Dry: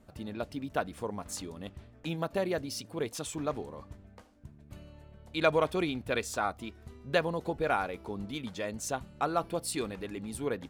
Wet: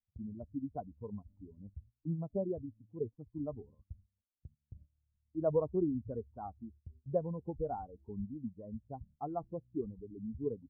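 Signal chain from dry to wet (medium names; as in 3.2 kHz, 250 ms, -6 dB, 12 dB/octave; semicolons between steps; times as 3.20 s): expander on every frequency bin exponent 2; gate -59 dBFS, range -17 dB; Gaussian low-pass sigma 13 samples; trim +3.5 dB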